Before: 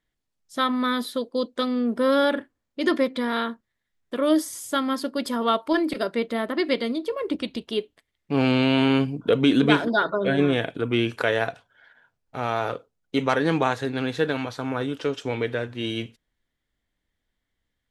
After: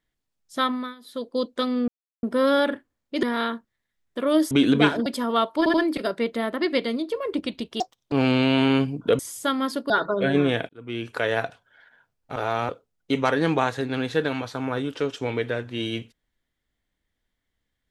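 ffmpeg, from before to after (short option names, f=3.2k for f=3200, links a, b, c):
-filter_complex "[0:a]asplit=16[a][b][c][d][e][f][g][h][i][j][k][l][m][n][o][p];[a]atrim=end=0.95,asetpts=PTS-STARTPTS,afade=t=out:st=0.65:d=0.3:silence=0.0749894[q];[b]atrim=start=0.95:end=1.01,asetpts=PTS-STARTPTS,volume=-22.5dB[r];[c]atrim=start=1.01:end=1.88,asetpts=PTS-STARTPTS,afade=t=in:d=0.3:silence=0.0749894,afade=t=out:st=0.866:d=0.004:c=hsin,apad=pad_dur=0.35[s];[d]atrim=start=1.88:end=2.882,asetpts=PTS-STARTPTS,afade=t=in:d=0.004:c=hsin[t];[e]atrim=start=3.188:end=4.472[u];[f]atrim=start=9.388:end=9.942[v];[g]atrim=start=5.178:end=5.782[w];[h]atrim=start=5.698:end=5.782[x];[i]atrim=start=5.698:end=7.764[y];[j]atrim=start=7.76:end=8.32,asetpts=PTS-STARTPTS,asetrate=77175,aresample=44100[z];[k]atrim=start=8.316:end=9.392[aa];[l]atrim=start=4.468:end=5.182[ab];[m]atrim=start=9.938:end=10.73,asetpts=PTS-STARTPTS,afade=t=out:st=0.788:d=0.004:c=hsin[ac];[n]atrim=start=10.73:end=12.402,asetpts=PTS-STARTPTS,afade=t=in:d=0.7[ad];[o]atrim=start=12.398:end=12.732,asetpts=PTS-STARTPTS,areverse[ae];[p]atrim=start=12.728[af];[q][r][s][t]concat=n=4:v=0:a=1[ag];[ag][u]acrossfade=d=0.004:c1=hsin:c2=hsin[ah];[ah][v]acrossfade=d=0.004:c1=hsin:c2=hsin[ai];[ai][w]acrossfade=d=0.004:c1=hsin:c2=hsin[aj];[aj][x]acrossfade=d=0.004:c1=hsin:c2=hsin[ak];[ak][y]acrossfade=d=0.004:c1=hsin:c2=hsin[al];[al][z]acrossfade=d=0.004:c1=hsin:c2=hsin[am];[am][aa]acrossfade=d=0.004:c1=hsin:c2=hsin[an];[an][ab]acrossfade=d=0.004:c1=hsin:c2=hsin[ao];[ac][ad]concat=n=2:v=0:a=1[ap];[ao][ap]acrossfade=d=0.004:c1=hsin:c2=hsin[aq];[aq][ae]acrossfade=d=0.004:c1=hsin:c2=hsin[ar];[ar][af]acrossfade=d=0.004:c1=hsin:c2=hsin"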